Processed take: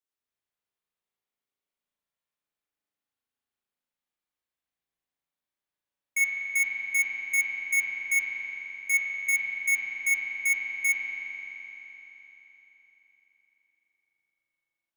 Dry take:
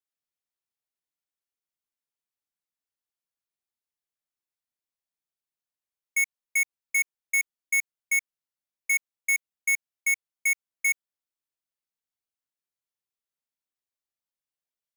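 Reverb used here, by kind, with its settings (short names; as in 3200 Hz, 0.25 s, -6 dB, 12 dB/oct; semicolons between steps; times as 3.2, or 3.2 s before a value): spring tank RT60 4 s, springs 36 ms, chirp 25 ms, DRR -6.5 dB; gain -3 dB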